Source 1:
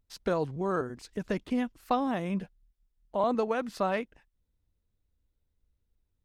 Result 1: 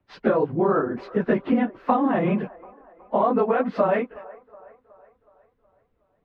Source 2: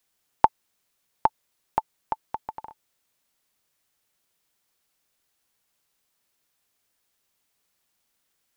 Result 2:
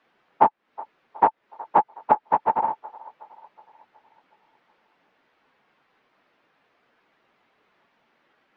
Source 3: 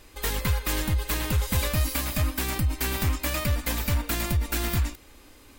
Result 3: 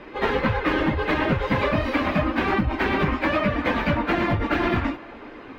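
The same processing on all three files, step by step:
random phases in long frames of 50 ms
three-way crossover with the lows and the highs turned down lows −18 dB, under 170 Hz, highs −13 dB, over 2,700 Hz
downward compressor 8 to 1, threshold −33 dBFS
high-frequency loss of the air 270 metres
delay with a band-pass on its return 369 ms, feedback 51%, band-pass 830 Hz, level −20 dB
loudness normalisation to −23 LKFS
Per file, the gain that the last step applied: +17.0, +19.5, +16.0 decibels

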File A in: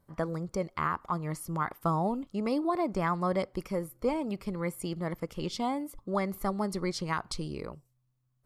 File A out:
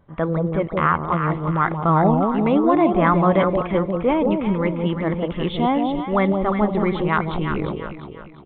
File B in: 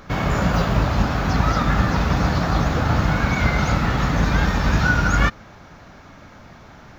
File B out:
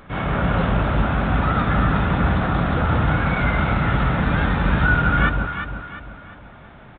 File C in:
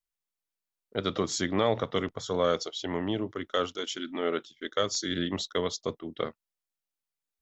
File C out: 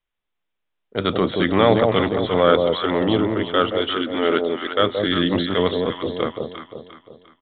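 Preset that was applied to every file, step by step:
dynamic equaliser 1,400 Hz, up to +5 dB, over −40 dBFS, Q 7.3
transient designer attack −5 dB, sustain 0 dB
delay that swaps between a low-pass and a high-pass 175 ms, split 840 Hz, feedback 63%, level −3 dB
downsampling to 8,000 Hz
loudness normalisation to −20 LKFS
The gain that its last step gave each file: +12.0, −1.5, +11.0 decibels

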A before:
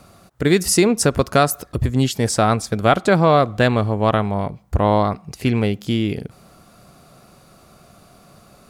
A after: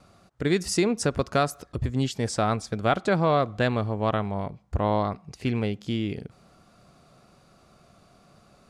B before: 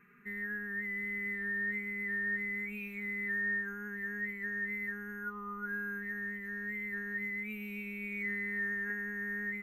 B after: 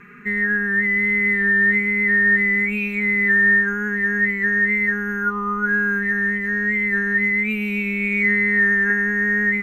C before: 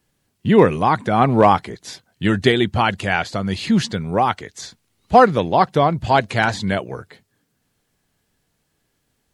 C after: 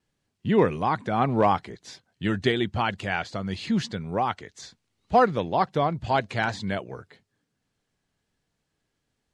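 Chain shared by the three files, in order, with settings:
pitch vibrato 1.1 Hz 16 cents
low-pass filter 7,600 Hz 12 dB per octave
normalise the peak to −9 dBFS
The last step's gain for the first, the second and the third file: −8.0, +18.5, −8.0 decibels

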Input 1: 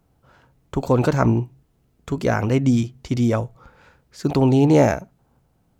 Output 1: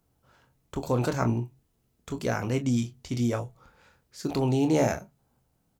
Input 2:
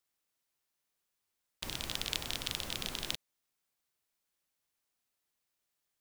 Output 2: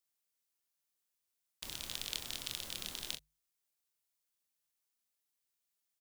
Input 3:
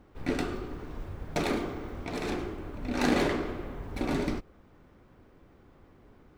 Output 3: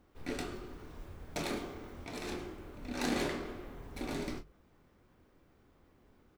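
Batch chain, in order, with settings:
high-shelf EQ 3,700 Hz +8.5 dB
mains-hum notches 50/100/150 Hz
on a send: ambience of single reflections 25 ms −9 dB, 39 ms −16 dB
on the sum: level −9 dB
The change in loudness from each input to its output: −8.5, −3.5, −7.5 LU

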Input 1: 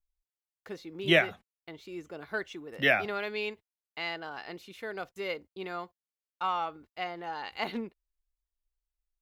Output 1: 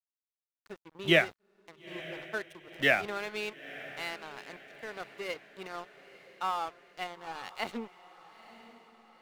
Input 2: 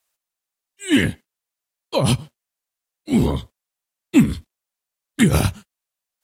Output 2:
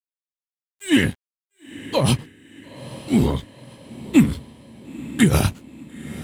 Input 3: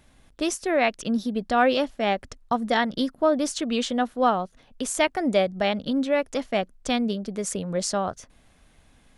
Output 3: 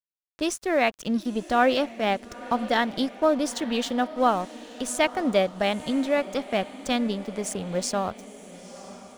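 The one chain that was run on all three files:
dead-zone distortion −42 dBFS
feedback delay with all-pass diffusion 942 ms, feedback 49%, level −16 dB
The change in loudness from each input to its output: −1.0, −0.5, −0.5 LU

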